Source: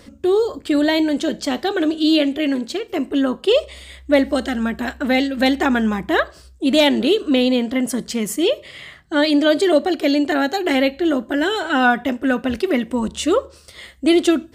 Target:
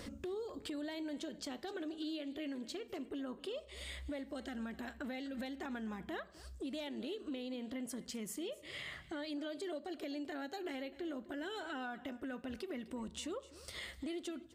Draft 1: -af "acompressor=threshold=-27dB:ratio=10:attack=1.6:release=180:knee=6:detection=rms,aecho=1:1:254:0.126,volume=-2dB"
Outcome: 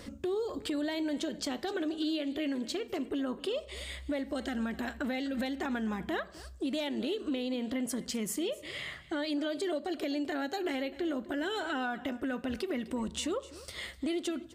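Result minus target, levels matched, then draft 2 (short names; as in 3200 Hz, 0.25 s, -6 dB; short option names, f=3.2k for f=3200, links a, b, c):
compressor: peak gain reduction -9 dB
-af "acompressor=threshold=-37dB:ratio=10:attack=1.6:release=180:knee=6:detection=rms,aecho=1:1:254:0.126,volume=-2dB"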